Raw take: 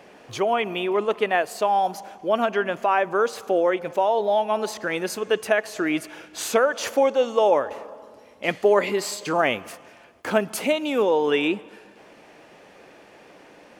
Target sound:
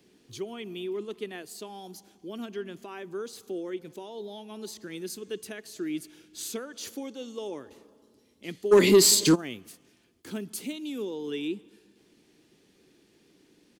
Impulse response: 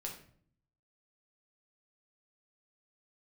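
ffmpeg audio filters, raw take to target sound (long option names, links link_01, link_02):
-filter_complex "[0:a]firequalizer=gain_entry='entry(370,0);entry(570,-19);entry(2300,-8);entry(5500,-18)':delay=0.05:min_phase=1,acrossover=split=200[link_01][link_02];[link_02]aexciter=amount=4.3:drive=8.9:freq=3600[link_03];[link_01][link_03]amix=inputs=2:normalize=0,asplit=3[link_04][link_05][link_06];[link_04]afade=type=out:start_time=8.71:duration=0.02[link_07];[link_05]aeval=exprs='0.668*sin(PI/2*5.62*val(0)/0.668)':channel_layout=same,afade=type=in:start_time=8.71:duration=0.02,afade=type=out:start_time=9.34:duration=0.02[link_08];[link_06]afade=type=in:start_time=9.34:duration=0.02[link_09];[link_07][link_08][link_09]amix=inputs=3:normalize=0,volume=-7.5dB"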